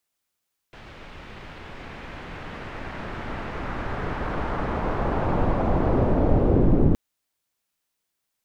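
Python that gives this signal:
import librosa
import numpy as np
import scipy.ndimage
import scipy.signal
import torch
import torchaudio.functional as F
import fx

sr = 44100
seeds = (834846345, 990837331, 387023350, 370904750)

y = fx.riser_noise(sr, seeds[0], length_s=6.22, colour='pink', kind='lowpass', start_hz=2800.0, end_hz=280.0, q=1.1, swell_db=29.5, law='linear')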